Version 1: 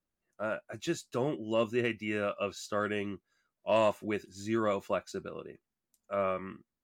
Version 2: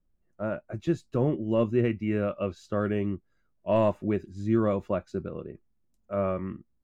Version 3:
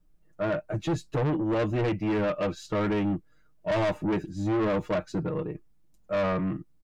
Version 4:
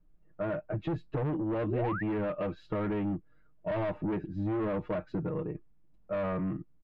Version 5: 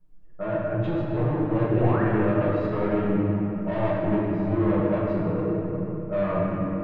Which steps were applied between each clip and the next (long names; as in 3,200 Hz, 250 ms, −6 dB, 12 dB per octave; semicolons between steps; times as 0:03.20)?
spectral tilt −4 dB per octave
comb filter 6.5 ms, depth 94%; in parallel at −1 dB: brickwall limiter −18 dBFS, peak gain reduction 7.5 dB; on the sum: soft clipping −23 dBFS, distortion −8 dB
downward compressor, threshold −29 dBFS, peak gain reduction 5 dB; sound drawn into the spectrogram rise, 0:01.66–0:02.03, 280–2,000 Hz −34 dBFS; high-frequency loss of the air 430 metres
convolution reverb RT60 3.5 s, pre-delay 5 ms, DRR −6.5 dB